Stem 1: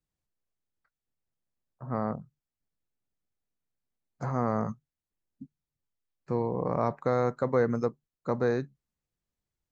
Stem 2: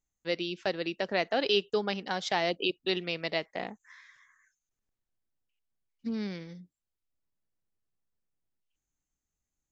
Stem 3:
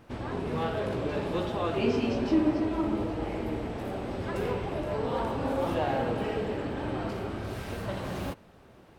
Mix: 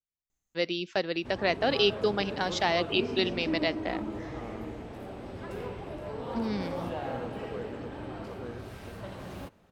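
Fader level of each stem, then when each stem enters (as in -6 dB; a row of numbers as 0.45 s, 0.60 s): -16.5 dB, +2.0 dB, -7.0 dB; 0.00 s, 0.30 s, 1.15 s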